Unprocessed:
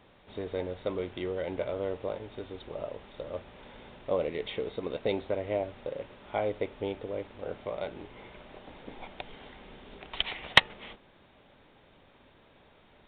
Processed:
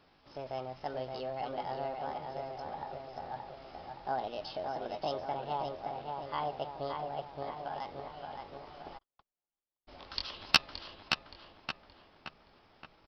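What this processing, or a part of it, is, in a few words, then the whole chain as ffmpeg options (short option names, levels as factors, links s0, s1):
chipmunk voice: -filter_complex "[0:a]asetrate=62367,aresample=44100,atempo=0.707107,bandreject=f=60:t=h:w=6,bandreject=f=120:t=h:w=6,asplit=2[s0][s1];[s1]adelay=572,lowpass=f=3000:p=1,volume=0.631,asplit=2[s2][s3];[s3]adelay=572,lowpass=f=3000:p=1,volume=0.54,asplit=2[s4][s5];[s5]adelay=572,lowpass=f=3000:p=1,volume=0.54,asplit=2[s6][s7];[s7]adelay=572,lowpass=f=3000:p=1,volume=0.54,asplit=2[s8][s9];[s9]adelay=572,lowpass=f=3000:p=1,volume=0.54,asplit=2[s10][s11];[s11]adelay=572,lowpass=f=3000:p=1,volume=0.54,asplit=2[s12][s13];[s13]adelay=572,lowpass=f=3000:p=1,volume=0.54[s14];[s0][s2][s4][s6][s8][s10][s12][s14]amix=inputs=8:normalize=0,asplit=3[s15][s16][s17];[s15]afade=t=out:st=8.97:d=0.02[s18];[s16]agate=range=0.00251:threshold=0.0178:ratio=16:detection=peak,afade=t=in:st=8.97:d=0.02,afade=t=out:st=9.87:d=0.02[s19];[s17]afade=t=in:st=9.87:d=0.02[s20];[s18][s19][s20]amix=inputs=3:normalize=0,volume=0.531"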